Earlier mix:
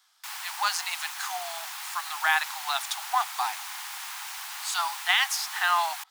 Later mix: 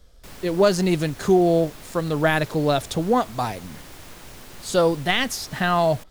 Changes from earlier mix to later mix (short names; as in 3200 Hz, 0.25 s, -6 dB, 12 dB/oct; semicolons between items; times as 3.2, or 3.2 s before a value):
background -8.0 dB; master: remove steep high-pass 770 Hz 96 dB/oct